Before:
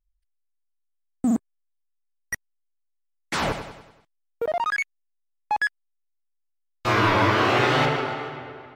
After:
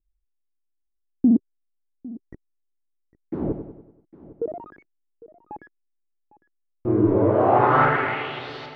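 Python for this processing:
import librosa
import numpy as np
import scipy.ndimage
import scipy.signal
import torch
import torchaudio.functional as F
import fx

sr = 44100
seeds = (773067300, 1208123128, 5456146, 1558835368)

y = x + 10.0 ** (-19.5 / 20.0) * np.pad(x, (int(804 * sr / 1000.0), 0))[:len(x)]
y = fx.filter_sweep_lowpass(y, sr, from_hz=340.0, to_hz=4500.0, start_s=7.05, end_s=8.52, q=2.8)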